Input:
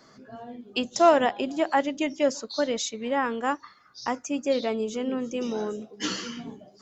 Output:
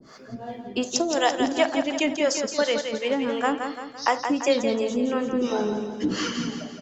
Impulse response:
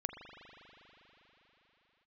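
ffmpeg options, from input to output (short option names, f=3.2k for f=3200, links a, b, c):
-filter_complex "[0:a]asettb=1/sr,asplit=3[a][b][c];[a]atrim=end=0.824[d];[b]atrim=start=0.82:end=1.43,asetpts=PTS-STARTPTS,afade=t=in:d=0.004:c=qsin,afade=t=out:st=0.606:d=0.004:c=qsin,highshelf=f=3.5k:t=q:w=1.5:g=9.5[e];[c]atrim=start=1.426[f];[d][e]acrossfade=d=0.004:c1=hsin:c2=qsin[g];[g][f]acrossfade=d=0.004:c1=qsin:c2=hsin,acrossover=split=810|1900[h][i][j];[h]acompressor=threshold=-28dB:ratio=4[k];[i]acompressor=threshold=-36dB:ratio=4[l];[j]acompressor=threshold=-35dB:ratio=4[m];[k][l][m]amix=inputs=3:normalize=0,acrossover=split=410[n][o];[n]aeval=exprs='val(0)*(1-1/2+1/2*cos(2*PI*2.8*n/s))':c=same[p];[o]aeval=exprs='val(0)*(1-1/2-1/2*cos(2*PI*2.8*n/s))':c=same[q];[p][q]amix=inputs=2:normalize=0,aecho=1:1:170|340|510|680|850|1020:0.447|0.219|0.107|0.0526|0.0258|0.0126,asplit=2[r][s];[1:a]atrim=start_sample=2205,atrim=end_sample=3969[t];[s][t]afir=irnorm=-1:irlink=0,volume=2dB[u];[r][u]amix=inputs=2:normalize=0,asplit=3[v][w][x];[v]afade=t=out:st=4.74:d=0.02[y];[w]adynamicequalizer=threshold=0.00355:dfrequency=2700:dqfactor=0.7:tfrequency=2700:tqfactor=0.7:attack=5:release=100:ratio=0.375:range=2:mode=cutabove:tftype=highshelf,afade=t=in:st=4.74:d=0.02,afade=t=out:st=6.33:d=0.02[z];[x]afade=t=in:st=6.33:d=0.02[aa];[y][z][aa]amix=inputs=3:normalize=0,volume=5dB"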